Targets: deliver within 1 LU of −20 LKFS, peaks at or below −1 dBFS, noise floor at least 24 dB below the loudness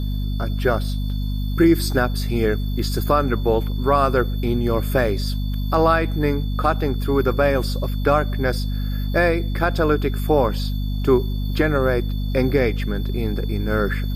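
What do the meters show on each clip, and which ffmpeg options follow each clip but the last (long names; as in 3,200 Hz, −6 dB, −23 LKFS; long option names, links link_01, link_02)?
mains hum 50 Hz; hum harmonics up to 250 Hz; level of the hum −21 dBFS; interfering tone 3,500 Hz; level of the tone −42 dBFS; integrated loudness −21.0 LKFS; sample peak −4.5 dBFS; target loudness −20.0 LKFS
→ -af "bandreject=frequency=50:width_type=h:width=4,bandreject=frequency=100:width_type=h:width=4,bandreject=frequency=150:width_type=h:width=4,bandreject=frequency=200:width_type=h:width=4,bandreject=frequency=250:width_type=h:width=4"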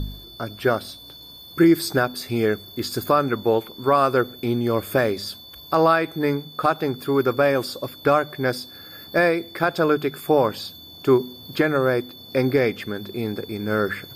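mains hum none found; interfering tone 3,500 Hz; level of the tone −42 dBFS
→ -af "bandreject=frequency=3500:width=30"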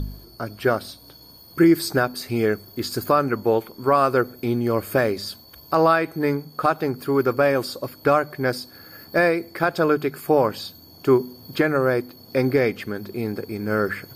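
interfering tone none found; integrated loudness −22.0 LKFS; sample peak −5.5 dBFS; target loudness −20.0 LKFS
→ -af "volume=2dB"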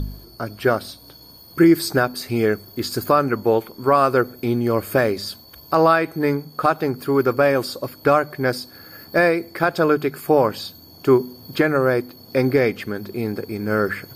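integrated loudness −20.0 LKFS; sample peak −3.5 dBFS; background noise floor −45 dBFS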